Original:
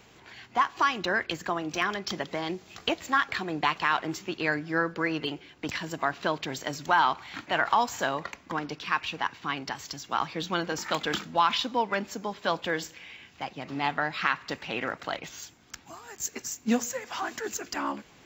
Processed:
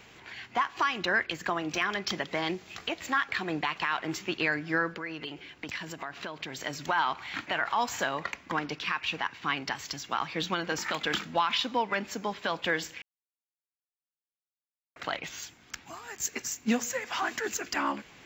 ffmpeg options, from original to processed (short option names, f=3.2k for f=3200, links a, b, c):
-filter_complex "[0:a]asettb=1/sr,asplit=3[a][b][c];[a]atrim=end=4.924[d];[b]atrim=start=4.92:end=6.6,asetpts=PTS-STARTPTS,afade=t=in:d=0.004:c=qsin,afade=t=out:st=1.676:d=0.004:c=qsin,acompressor=threshold=-37dB:ratio=4:attack=3.2:release=140:knee=1:detection=peak[e];[c]atrim=start=6.596[f];[d][e]acrossfade=d=0.004:c1=hsin:c2=qsin[g];[g][f]acrossfade=d=0.004:c1=qsin:c2=hsin,asplit=3[h][i][j];[h]atrim=end=13.02,asetpts=PTS-STARTPTS,afade=t=out:st=13.016:d=0.004:c=hsin[k];[i]atrim=start=13.02:end=14.96,asetpts=PTS-STARTPTS,volume=0[l];[j]atrim=start=14.96,asetpts=PTS-STARTPTS,afade=t=in:d=0.004:c=hsin[m];[k][l][m]concat=n=3:v=0:a=1,equalizer=f=2.2k:t=o:w=1.4:g=5.5,alimiter=limit=-16.5dB:level=0:latency=1:release=185"